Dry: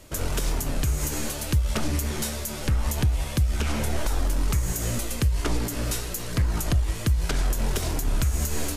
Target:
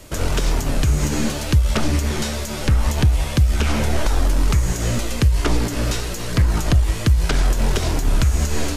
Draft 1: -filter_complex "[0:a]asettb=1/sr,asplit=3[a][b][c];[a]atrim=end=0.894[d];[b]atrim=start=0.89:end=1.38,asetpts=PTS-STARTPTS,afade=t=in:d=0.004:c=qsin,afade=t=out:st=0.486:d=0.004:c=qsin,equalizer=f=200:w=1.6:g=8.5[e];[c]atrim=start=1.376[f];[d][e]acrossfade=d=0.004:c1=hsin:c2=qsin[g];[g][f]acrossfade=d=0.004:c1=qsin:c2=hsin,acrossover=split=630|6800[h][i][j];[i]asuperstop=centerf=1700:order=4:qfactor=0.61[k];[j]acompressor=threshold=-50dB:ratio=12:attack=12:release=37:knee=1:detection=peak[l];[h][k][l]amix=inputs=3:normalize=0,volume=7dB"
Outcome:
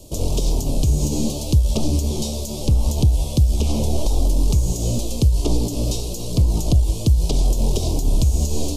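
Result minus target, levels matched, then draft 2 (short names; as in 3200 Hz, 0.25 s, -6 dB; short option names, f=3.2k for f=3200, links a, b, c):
2000 Hz band -18.0 dB
-filter_complex "[0:a]asettb=1/sr,asplit=3[a][b][c];[a]atrim=end=0.894[d];[b]atrim=start=0.89:end=1.38,asetpts=PTS-STARTPTS,afade=t=in:d=0.004:c=qsin,afade=t=out:st=0.486:d=0.004:c=qsin,equalizer=f=200:w=1.6:g=8.5[e];[c]atrim=start=1.376[f];[d][e]acrossfade=d=0.004:c1=hsin:c2=qsin[g];[g][f]acrossfade=d=0.004:c1=qsin:c2=hsin,acrossover=split=630|6800[h][i][j];[j]acompressor=threshold=-50dB:ratio=12:attack=12:release=37:knee=1:detection=peak[k];[h][i][k]amix=inputs=3:normalize=0,volume=7dB"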